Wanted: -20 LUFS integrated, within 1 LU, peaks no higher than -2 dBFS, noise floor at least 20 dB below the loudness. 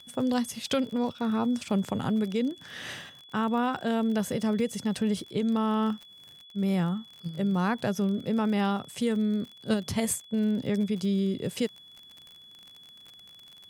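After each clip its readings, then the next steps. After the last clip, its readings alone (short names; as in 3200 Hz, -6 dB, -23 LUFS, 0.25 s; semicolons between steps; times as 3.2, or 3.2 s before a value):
ticks 43/s; steady tone 3400 Hz; tone level -49 dBFS; loudness -29.0 LUFS; peak -13.0 dBFS; loudness target -20.0 LUFS
-> de-click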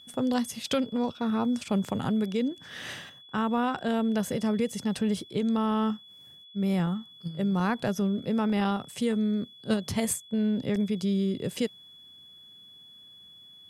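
ticks 0.073/s; steady tone 3400 Hz; tone level -49 dBFS
-> notch 3400 Hz, Q 30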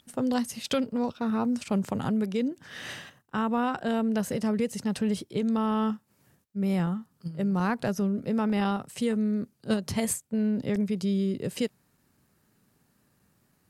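steady tone none; loudness -29.0 LUFS; peak -13.5 dBFS; loudness target -20.0 LUFS
-> gain +9 dB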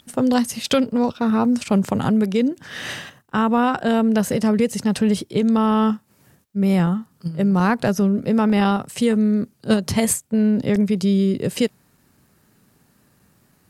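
loudness -20.0 LUFS; peak -4.5 dBFS; noise floor -60 dBFS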